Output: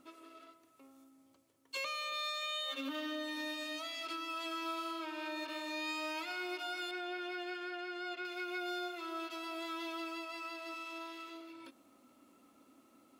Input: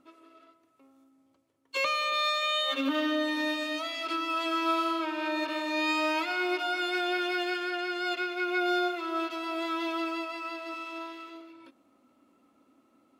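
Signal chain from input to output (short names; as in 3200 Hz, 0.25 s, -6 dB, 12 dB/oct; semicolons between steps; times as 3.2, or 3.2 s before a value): high shelf 4200 Hz +9.5 dB, from 6.91 s -4.5 dB, from 8.25 s +10 dB; compressor 2:1, threshold -48 dBFS, peak gain reduction 14 dB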